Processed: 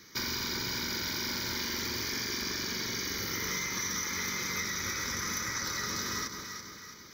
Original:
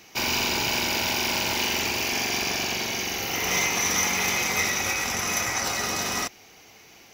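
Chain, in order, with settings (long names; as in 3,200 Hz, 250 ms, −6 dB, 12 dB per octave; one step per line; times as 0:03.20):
phaser with its sweep stopped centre 2,700 Hz, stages 6
harmonic generator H 4 −40 dB, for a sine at −15 dBFS
delay that swaps between a low-pass and a high-pass 166 ms, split 1,100 Hz, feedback 69%, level −9 dB
downward compressor, threshold −31 dBFS, peak gain reduction 8 dB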